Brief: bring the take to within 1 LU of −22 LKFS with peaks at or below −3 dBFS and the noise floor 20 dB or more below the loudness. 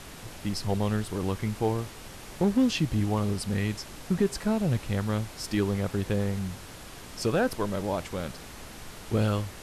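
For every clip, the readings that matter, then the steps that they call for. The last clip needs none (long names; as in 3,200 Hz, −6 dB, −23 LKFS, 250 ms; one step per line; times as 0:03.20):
share of clipped samples 0.2%; peaks flattened at −16.0 dBFS; background noise floor −45 dBFS; target noise floor −49 dBFS; integrated loudness −29.0 LKFS; sample peak −16.0 dBFS; target loudness −22.0 LKFS
→ clipped peaks rebuilt −16 dBFS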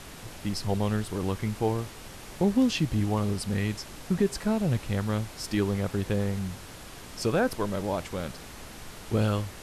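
share of clipped samples 0.0%; background noise floor −45 dBFS; target noise floor −49 dBFS
→ noise reduction from a noise print 6 dB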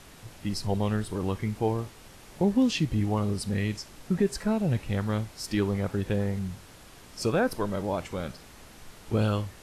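background noise floor −51 dBFS; integrated loudness −29.0 LKFS; sample peak −13.0 dBFS; target loudness −22.0 LKFS
→ level +7 dB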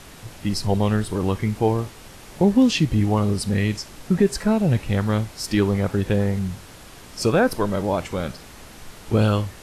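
integrated loudness −22.0 LKFS; sample peak −6.0 dBFS; background noise floor −44 dBFS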